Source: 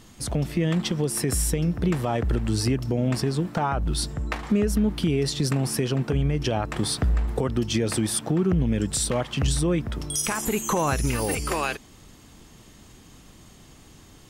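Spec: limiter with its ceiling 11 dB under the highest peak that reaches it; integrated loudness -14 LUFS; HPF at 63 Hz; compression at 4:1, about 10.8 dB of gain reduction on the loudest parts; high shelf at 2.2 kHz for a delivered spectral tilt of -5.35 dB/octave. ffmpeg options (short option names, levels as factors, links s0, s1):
-af "highpass=63,highshelf=f=2200:g=-8.5,acompressor=threshold=0.0251:ratio=4,volume=18.8,alimiter=limit=0.531:level=0:latency=1"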